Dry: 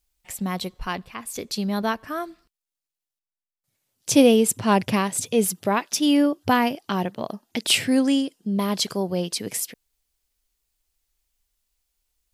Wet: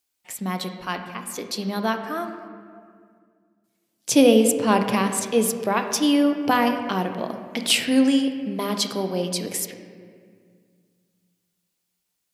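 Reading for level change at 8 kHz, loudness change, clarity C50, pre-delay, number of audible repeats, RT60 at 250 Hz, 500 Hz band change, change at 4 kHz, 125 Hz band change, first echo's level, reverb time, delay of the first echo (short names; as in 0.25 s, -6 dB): 0.0 dB, +0.5 dB, 7.5 dB, 3 ms, none, 2.6 s, +1.0 dB, +0.5 dB, -1.5 dB, none, 2.1 s, none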